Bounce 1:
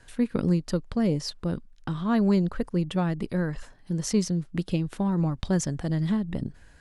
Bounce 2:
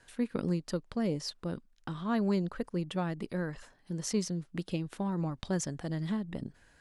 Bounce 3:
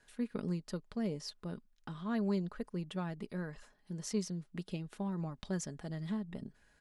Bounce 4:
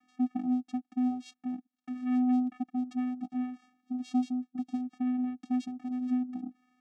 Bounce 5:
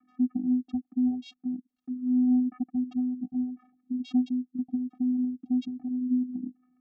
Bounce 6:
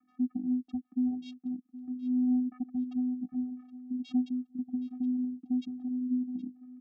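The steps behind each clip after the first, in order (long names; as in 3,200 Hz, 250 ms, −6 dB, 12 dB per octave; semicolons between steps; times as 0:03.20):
low-shelf EQ 140 Hz −10 dB; level −4.5 dB
comb filter 4.8 ms, depth 37%; level −6.5 dB
channel vocoder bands 4, square 251 Hz; level +7.5 dB
spectral envelope exaggerated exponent 3; level +3.5 dB
repeating echo 769 ms, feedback 21%, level −16.5 dB; level −4.5 dB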